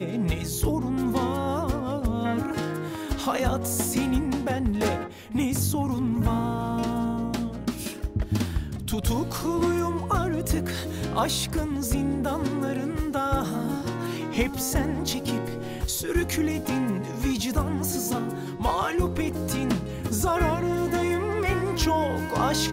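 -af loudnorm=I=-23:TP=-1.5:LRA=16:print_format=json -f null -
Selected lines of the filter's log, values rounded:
"input_i" : "-26.7",
"input_tp" : "-12.4",
"input_lra" : "2.5",
"input_thresh" : "-36.7",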